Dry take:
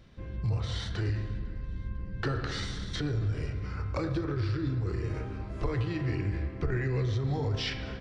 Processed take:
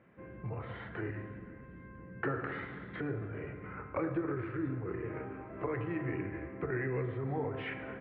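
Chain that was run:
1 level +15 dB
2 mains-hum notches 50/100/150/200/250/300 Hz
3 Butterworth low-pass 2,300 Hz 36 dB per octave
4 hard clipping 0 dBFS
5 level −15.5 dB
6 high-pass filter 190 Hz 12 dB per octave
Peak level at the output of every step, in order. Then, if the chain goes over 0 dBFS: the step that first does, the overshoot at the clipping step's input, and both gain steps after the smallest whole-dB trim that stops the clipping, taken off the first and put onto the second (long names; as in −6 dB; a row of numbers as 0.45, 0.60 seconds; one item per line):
−5.5, −5.0, −5.0, −5.0, −20.5, −21.0 dBFS
no step passes full scale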